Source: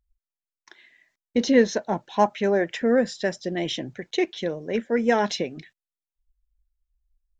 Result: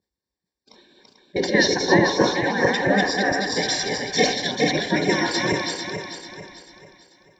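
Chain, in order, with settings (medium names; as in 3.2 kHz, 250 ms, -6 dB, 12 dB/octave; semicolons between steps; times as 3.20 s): backward echo that repeats 221 ms, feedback 62%, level -1.5 dB; treble shelf 5.3 kHz -5 dB, from 3.52 s +7.5 dB; spectral gate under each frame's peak -15 dB weak; comb of notches 660 Hz; reverberation RT60 0.75 s, pre-delay 3 ms, DRR 10 dB; decay stretcher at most 90 dB/s; trim +2 dB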